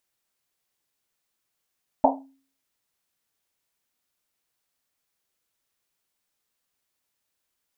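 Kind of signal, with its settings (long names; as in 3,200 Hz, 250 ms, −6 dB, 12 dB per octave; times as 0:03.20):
drum after Risset, pitch 270 Hz, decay 0.46 s, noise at 740 Hz, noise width 350 Hz, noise 65%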